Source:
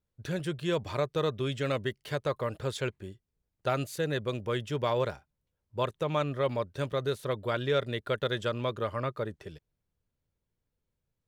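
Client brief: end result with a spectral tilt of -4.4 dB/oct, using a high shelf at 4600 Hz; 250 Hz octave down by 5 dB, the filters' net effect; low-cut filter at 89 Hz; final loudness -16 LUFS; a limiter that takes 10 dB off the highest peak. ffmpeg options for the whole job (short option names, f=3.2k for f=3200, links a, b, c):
-af "highpass=89,equalizer=f=250:t=o:g=-8,highshelf=f=4.6k:g=-3,volume=21.5dB,alimiter=limit=-3.5dB:level=0:latency=1"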